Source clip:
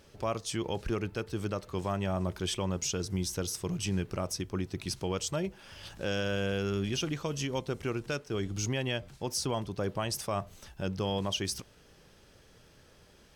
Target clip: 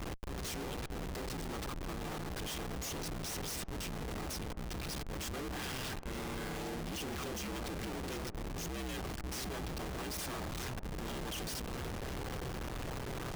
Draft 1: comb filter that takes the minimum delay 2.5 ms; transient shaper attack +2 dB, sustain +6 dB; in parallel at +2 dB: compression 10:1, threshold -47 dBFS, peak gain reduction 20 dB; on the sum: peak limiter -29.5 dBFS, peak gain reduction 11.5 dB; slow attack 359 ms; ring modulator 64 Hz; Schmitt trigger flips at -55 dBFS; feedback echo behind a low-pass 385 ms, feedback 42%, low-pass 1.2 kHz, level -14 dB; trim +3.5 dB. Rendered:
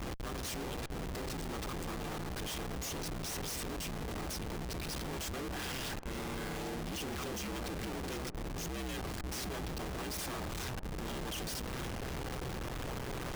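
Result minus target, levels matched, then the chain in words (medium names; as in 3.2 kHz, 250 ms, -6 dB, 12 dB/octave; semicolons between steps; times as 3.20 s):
compression: peak gain reduction -7.5 dB
comb filter that takes the minimum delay 2.5 ms; transient shaper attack +2 dB, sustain +6 dB; in parallel at +2 dB: compression 10:1, threshold -55.5 dBFS, peak gain reduction 27.5 dB; on the sum: peak limiter -29.5 dBFS, peak gain reduction 10.5 dB; slow attack 359 ms; ring modulator 64 Hz; Schmitt trigger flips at -55 dBFS; feedback echo behind a low-pass 385 ms, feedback 42%, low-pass 1.2 kHz, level -14 dB; trim +3.5 dB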